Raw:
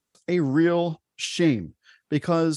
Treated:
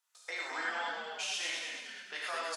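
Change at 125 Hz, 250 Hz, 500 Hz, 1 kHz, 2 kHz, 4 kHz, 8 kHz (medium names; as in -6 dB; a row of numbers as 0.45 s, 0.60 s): under -40 dB, -34.0 dB, -19.5 dB, -6.0 dB, -1.5 dB, -3.5 dB, -4.0 dB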